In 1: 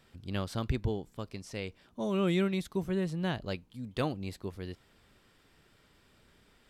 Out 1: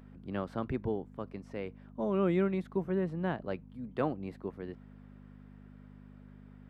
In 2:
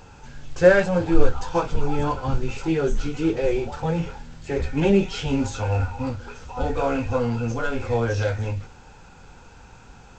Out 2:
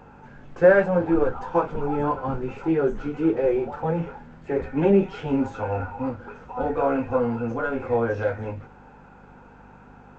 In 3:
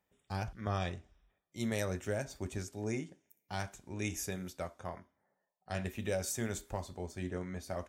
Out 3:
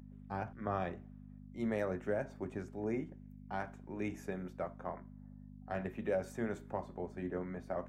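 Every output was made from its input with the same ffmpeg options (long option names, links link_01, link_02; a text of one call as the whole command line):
ffmpeg -i in.wav -filter_complex "[0:a]apsyclip=8.5dB,aeval=exprs='val(0)+0.0178*(sin(2*PI*50*n/s)+sin(2*PI*2*50*n/s)/2+sin(2*PI*3*50*n/s)/3+sin(2*PI*4*50*n/s)/4+sin(2*PI*5*50*n/s)/5)':channel_layout=same,acrossover=split=160 2000:gain=0.2 1 0.0794[link_01][link_02][link_03];[link_01][link_02][link_03]amix=inputs=3:normalize=0,volume=-7dB" out.wav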